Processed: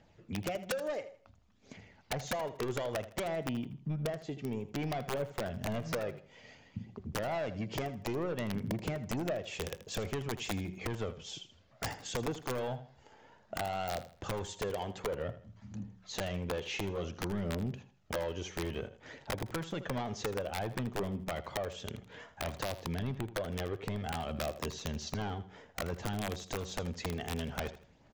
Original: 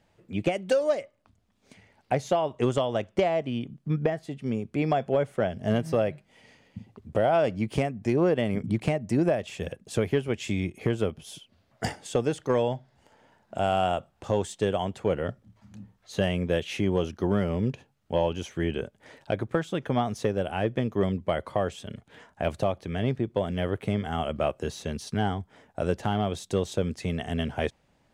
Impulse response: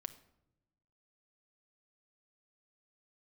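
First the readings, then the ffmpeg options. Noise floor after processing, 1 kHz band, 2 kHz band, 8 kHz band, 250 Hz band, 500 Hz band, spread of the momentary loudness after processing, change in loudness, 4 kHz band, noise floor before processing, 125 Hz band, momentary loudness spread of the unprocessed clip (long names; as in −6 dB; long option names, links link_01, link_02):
−63 dBFS, −9.0 dB, −5.5 dB, −1.0 dB, −10.0 dB, −11.0 dB, 9 LU, −9.5 dB, −4.0 dB, −68 dBFS, −8.5 dB, 10 LU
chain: -filter_complex "[0:a]aresample=16000,asoftclip=type=tanh:threshold=-22.5dB,aresample=44100,aphaser=in_gain=1:out_gain=1:delay=2.6:decay=0.34:speed=0.57:type=triangular,acompressor=threshold=-35dB:ratio=3,aeval=exprs='(mod(25.1*val(0)+1,2)-1)/25.1':channel_layout=same,bandreject=frequency=185.2:width_type=h:width=4,bandreject=frequency=370.4:width_type=h:width=4,bandreject=frequency=555.6:width_type=h:width=4,bandreject=frequency=740.8:width_type=h:width=4,bandreject=frequency=926:width_type=h:width=4,asplit=2[link_01][link_02];[link_02]aecho=0:1:80|160|240:0.2|0.0638|0.0204[link_03];[link_01][link_03]amix=inputs=2:normalize=0"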